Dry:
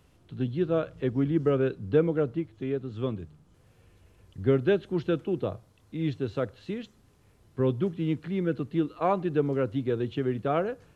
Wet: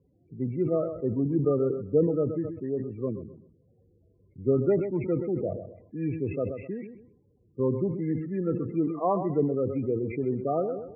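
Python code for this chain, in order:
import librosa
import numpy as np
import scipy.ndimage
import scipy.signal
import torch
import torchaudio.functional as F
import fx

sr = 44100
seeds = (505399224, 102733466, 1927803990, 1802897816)

y = fx.freq_compress(x, sr, knee_hz=1100.0, ratio=1.5)
y = fx.notch_comb(y, sr, f0_hz=1500.0)
y = fx.spec_topn(y, sr, count=16)
y = fx.echo_feedback(y, sr, ms=129, feedback_pct=25, wet_db=-13.5)
y = fx.env_lowpass(y, sr, base_hz=740.0, full_db=-23.0)
y = fx.sustainer(y, sr, db_per_s=72.0)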